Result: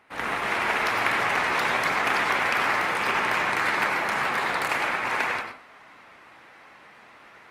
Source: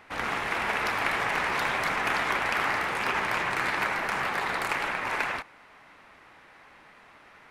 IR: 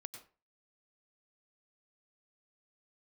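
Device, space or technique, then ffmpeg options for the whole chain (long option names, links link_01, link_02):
far-field microphone of a smart speaker: -filter_complex "[1:a]atrim=start_sample=2205[link_01];[0:a][link_01]afir=irnorm=-1:irlink=0,highpass=frequency=120:poles=1,dynaudnorm=framelen=100:gausssize=3:maxgain=8dB" -ar 48000 -c:a libopus -b:a 32k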